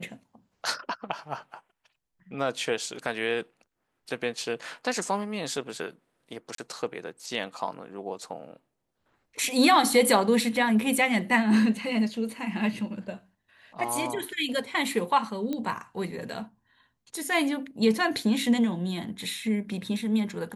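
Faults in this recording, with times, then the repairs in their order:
6.55–6.58 gap 33 ms
15.53 pop -19 dBFS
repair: de-click; interpolate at 6.55, 33 ms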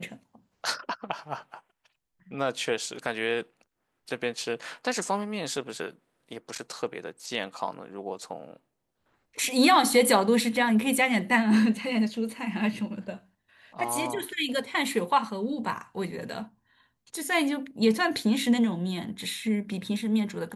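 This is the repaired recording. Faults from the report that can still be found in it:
15.53 pop

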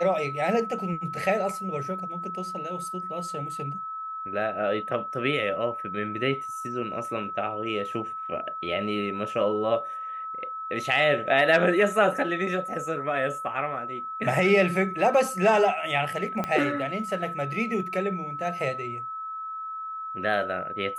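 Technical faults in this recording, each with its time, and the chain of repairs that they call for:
tone 1300 Hz -32 dBFS
16.44 pop -15 dBFS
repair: de-click; notch 1300 Hz, Q 30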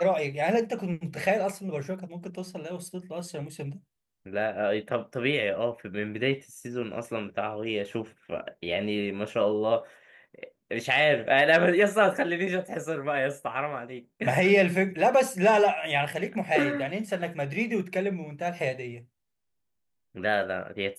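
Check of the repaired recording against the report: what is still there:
16.44 pop

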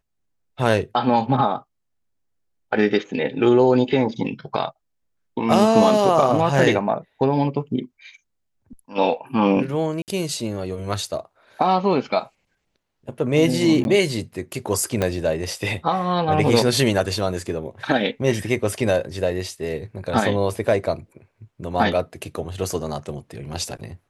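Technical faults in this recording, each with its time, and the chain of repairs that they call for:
10.02–10.08 gap 58 ms
13.84–13.85 gap 11 ms
15.02 pop -8 dBFS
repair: de-click; interpolate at 10.02, 58 ms; interpolate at 13.84, 11 ms

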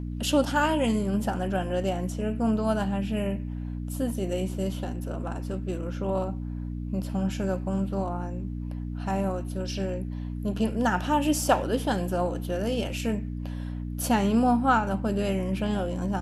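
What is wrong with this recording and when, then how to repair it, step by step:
hum 60 Hz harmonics 5 -33 dBFS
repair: de-hum 60 Hz, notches 5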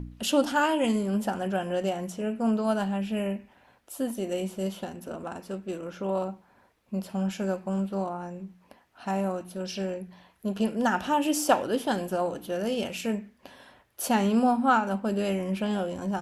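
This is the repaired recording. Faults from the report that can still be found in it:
none

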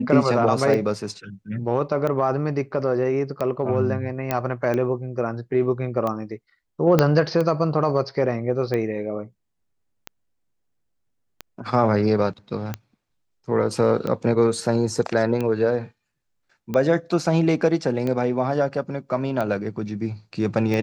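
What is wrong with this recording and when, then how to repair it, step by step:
tick 45 rpm -14 dBFS
4.31 pop -8 dBFS
6.99 pop -3 dBFS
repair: de-click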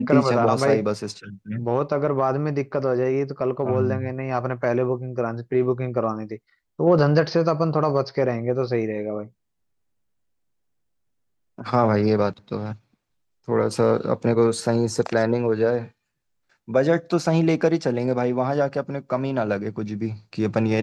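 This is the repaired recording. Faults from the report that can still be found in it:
6.99 pop

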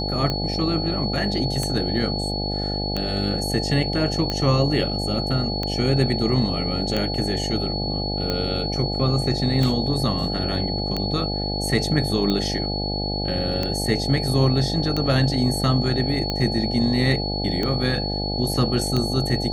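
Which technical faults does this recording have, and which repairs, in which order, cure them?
buzz 50 Hz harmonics 17 -27 dBFS
tick 45 rpm -11 dBFS
tone 4400 Hz -28 dBFS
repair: de-click; notch 4400 Hz, Q 30; de-hum 50 Hz, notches 17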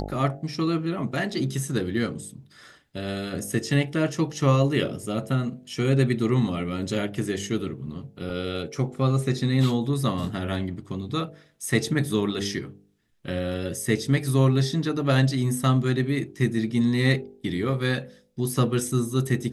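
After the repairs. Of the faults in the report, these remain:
none

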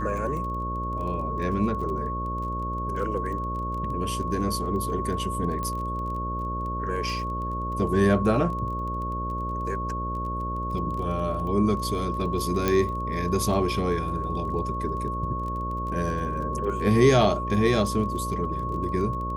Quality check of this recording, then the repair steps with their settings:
buzz 60 Hz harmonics 10 -32 dBFS
crackle 21/s -34 dBFS
tone 1100 Hz -30 dBFS
5.63 pop -19 dBFS
12.68 pop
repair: de-click; de-hum 60 Hz, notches 10; notch 1100 Hz, Q 30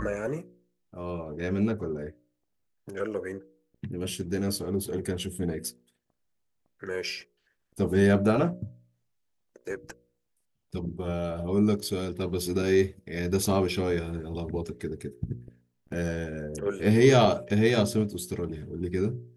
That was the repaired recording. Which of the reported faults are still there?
12.68 pop

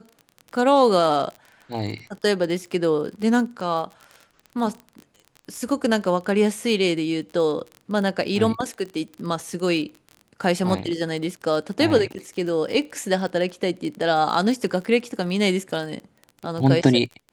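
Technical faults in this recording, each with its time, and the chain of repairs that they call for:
crackle 30/s -30 dBFS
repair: de-click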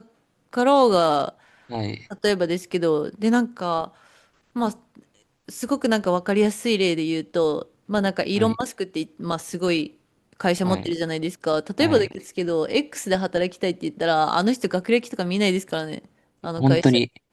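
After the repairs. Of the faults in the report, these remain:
none

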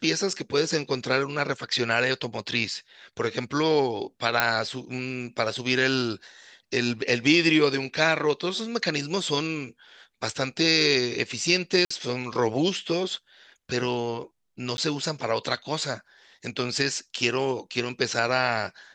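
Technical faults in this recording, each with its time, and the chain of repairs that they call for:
4.4 pop -4 dBFS
11.85–11.9 gap 55 ms
14.77–14.78 gap 11 ms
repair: de-click; interpolate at 11.85, 55 ms; interpolate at 14.77, 11 ms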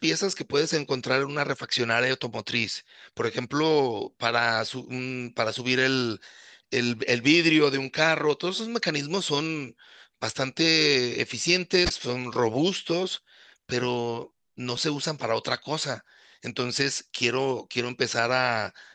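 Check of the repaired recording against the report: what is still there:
none

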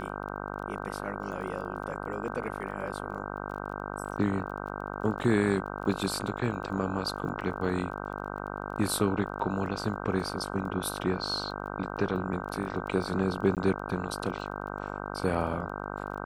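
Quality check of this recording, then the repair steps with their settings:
buzz 50 Hz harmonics 31 -37 dBFS
crackle 23/s -41 dBFS
13.55–13.57 gap 18 ms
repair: de-click; de-hum 50 Hz, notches 31; interpolate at 13.55, 18 ms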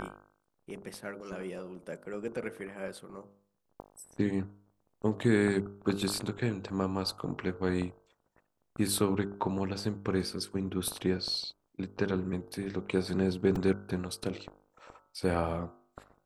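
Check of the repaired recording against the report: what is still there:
none

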